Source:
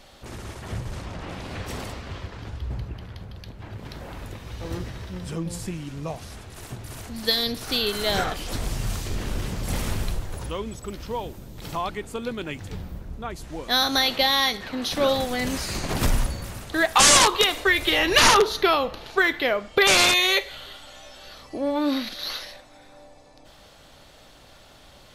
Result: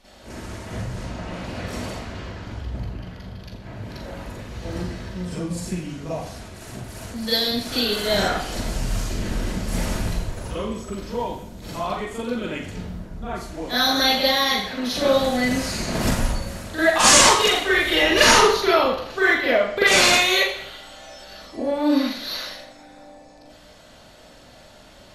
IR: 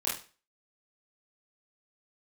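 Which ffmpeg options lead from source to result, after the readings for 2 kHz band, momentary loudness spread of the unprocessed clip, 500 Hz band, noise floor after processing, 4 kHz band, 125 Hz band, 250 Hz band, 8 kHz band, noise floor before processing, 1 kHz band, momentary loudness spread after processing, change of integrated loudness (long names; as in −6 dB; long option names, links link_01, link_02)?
+3.0 dB, 22 LU, +4.0 dB, −48 dBFS, +1.5 dB, +1.5 dB, +4.5 dB, +2.5 dB, −50 dBFS, +2.0 dB, 22 LU, +2.0 dB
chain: -filter_complex "[1:a]atrim=start_sample=2205,asetrate=25578,aresample=44100[link_01];[0:a][link_01]afir=irnorm=-1:irlink=0,volume=-8dB"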